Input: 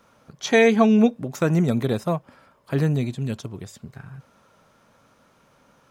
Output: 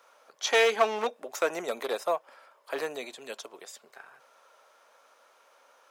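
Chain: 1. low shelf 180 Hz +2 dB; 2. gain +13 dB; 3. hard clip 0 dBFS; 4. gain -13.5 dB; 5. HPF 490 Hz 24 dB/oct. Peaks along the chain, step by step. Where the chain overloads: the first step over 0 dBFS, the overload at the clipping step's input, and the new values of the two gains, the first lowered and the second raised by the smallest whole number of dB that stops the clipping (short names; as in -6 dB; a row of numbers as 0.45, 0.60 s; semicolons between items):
-5.0, +8.0, 0.0, -13.5, -10.5 dBFS; step 2, 8.0 dB; step 2 +5 dB, step 4 -5.5 dB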